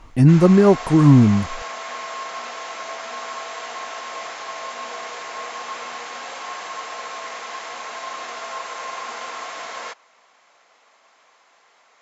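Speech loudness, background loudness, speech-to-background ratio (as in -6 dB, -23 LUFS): -14.0 LUFS, -31.5 LUFS, 17.5 dB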